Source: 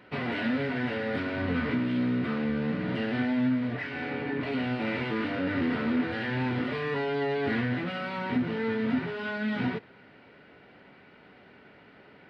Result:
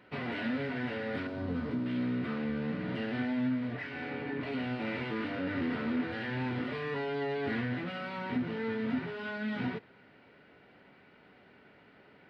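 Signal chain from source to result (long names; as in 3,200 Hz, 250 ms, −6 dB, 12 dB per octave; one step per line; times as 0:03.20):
0:01.27–0:01.86: parametric band 2,200 Hz −11 dB 1.6 octaves
level −5 dB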